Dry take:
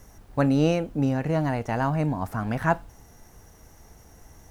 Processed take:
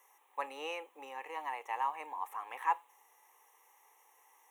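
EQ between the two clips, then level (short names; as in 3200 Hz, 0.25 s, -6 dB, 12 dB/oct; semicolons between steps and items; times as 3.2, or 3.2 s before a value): ladder high-pass 650 Hz, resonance 30%; fixed phaser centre 980 Hz, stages 8; +1.0 dB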